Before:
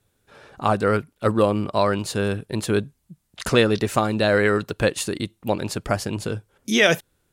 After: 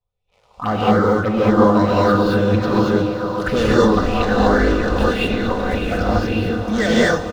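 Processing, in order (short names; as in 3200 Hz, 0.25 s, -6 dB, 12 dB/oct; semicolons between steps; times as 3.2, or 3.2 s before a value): 3.81–6.12 cycle switcher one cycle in 2, muted; LPF 3900 Hz 12 dB/oct; low shelf 120 Hz +10 dB; comb 4 ms, depth 48%; de-hum 153.3 Hz, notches 30; sample leveller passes 3; envelope phaser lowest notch 270 Hz, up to 2500 Hz, full sweep at -9 dBFS; swelling echo 0.146 s, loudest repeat 5, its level -16 dB; non-linear reverb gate 0.26 s rising, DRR -6 dB; LFO bell 1.8 Hz 1000–2700 Hz +11 dB; gain -11 dB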